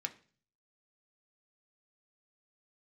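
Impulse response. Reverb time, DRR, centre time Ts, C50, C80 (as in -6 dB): 0.40 s, 5.0 dB, 5 ms, 16.5 dB, 21.0 dB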